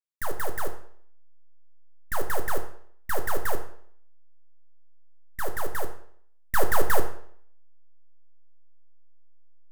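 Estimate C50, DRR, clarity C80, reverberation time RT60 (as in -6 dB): 9.5 dB, 5.0 dB, 12.5 dB, 0.60 s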